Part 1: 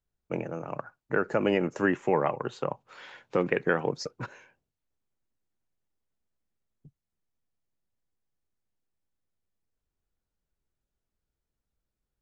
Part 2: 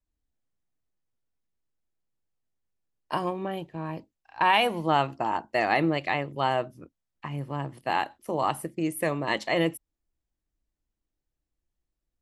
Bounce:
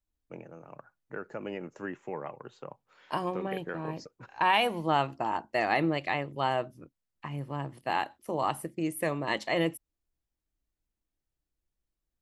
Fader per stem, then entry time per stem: −12.5, −3.0 decibels; 0.00, 0.00 seconds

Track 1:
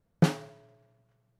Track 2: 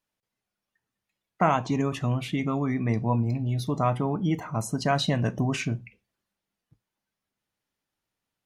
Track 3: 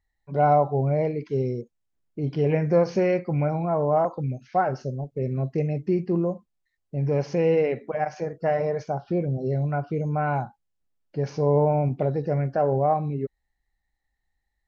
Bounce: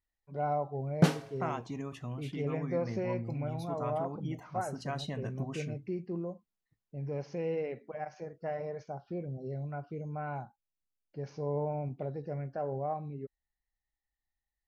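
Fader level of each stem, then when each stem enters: −1.0, −13.5, −13.0 decibels; 0.80, 0.00, 0.00 seconds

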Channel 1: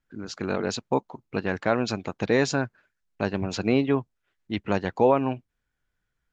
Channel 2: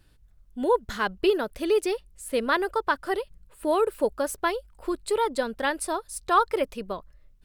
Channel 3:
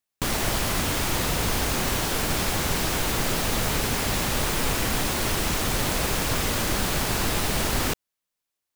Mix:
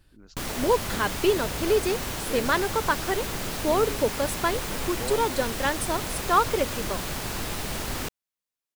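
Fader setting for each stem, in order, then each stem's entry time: −16.0, 0.0, −6.5 decibels; 0.00, 0.00, 0.15 seconds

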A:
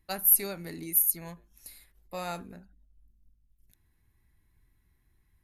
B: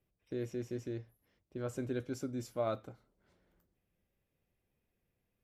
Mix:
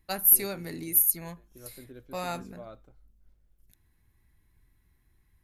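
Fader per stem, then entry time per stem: +2.0, −11.0 decibels; 0.00, 0.00 seconds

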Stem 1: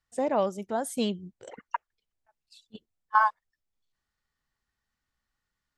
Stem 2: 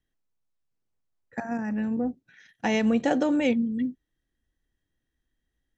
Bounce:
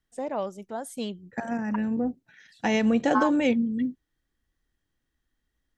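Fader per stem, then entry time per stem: −4.5, +0.5 decibels; 0.00, 0.00 seconds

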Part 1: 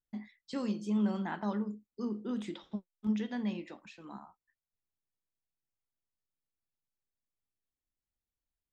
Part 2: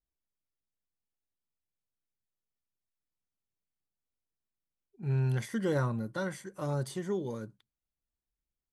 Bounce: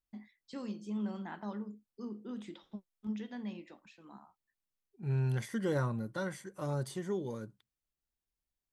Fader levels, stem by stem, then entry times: −6.5, −2.5 decibels; 0.00, 0.00 seconds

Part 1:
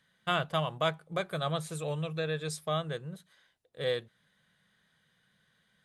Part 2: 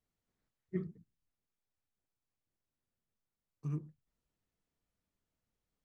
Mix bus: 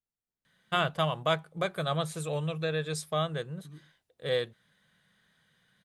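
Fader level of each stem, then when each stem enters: +2.0, −11.5 decibels; 0.45, 0.00 seconds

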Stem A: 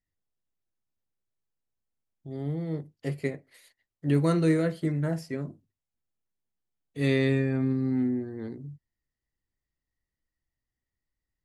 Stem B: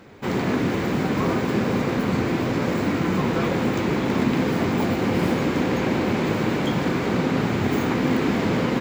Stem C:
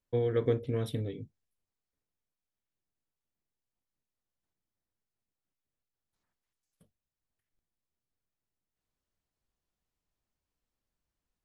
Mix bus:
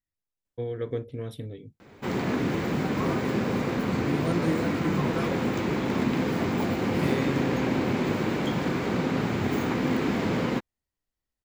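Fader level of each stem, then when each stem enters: −6.0, −4.5, −3.0 decibels; 0.00, 1.80, 0.45 seconds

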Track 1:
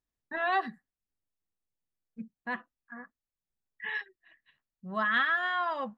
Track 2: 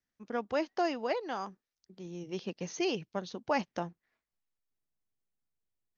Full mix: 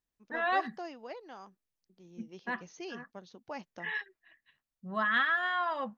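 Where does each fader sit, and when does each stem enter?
−1.0, −11.5 decibels; 0.00, 0.00 seconds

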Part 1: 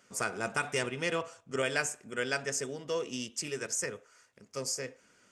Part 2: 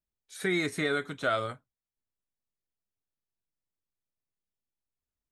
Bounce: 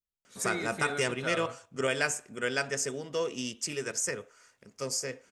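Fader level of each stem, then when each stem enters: +2.0, −7.5 decibels; 0.25, 0.00 seconds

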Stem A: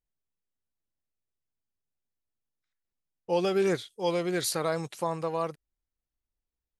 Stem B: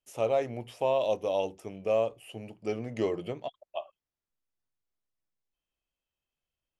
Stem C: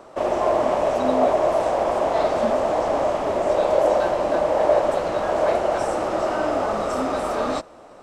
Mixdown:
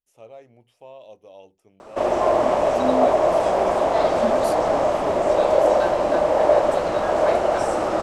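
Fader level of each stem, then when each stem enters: −7.5, −16.0, +1.5 decibels; 0.00, 0.00, 1.80 seconds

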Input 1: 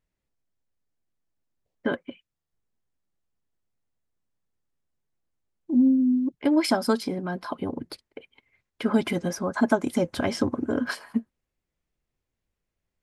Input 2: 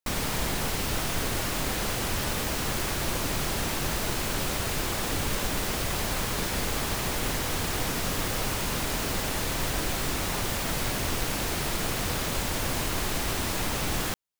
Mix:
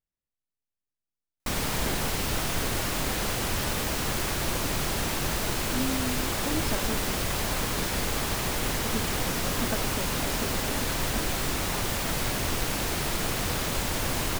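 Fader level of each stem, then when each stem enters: −12.5, +0.5 decibels; 0.00, 1.40 seconds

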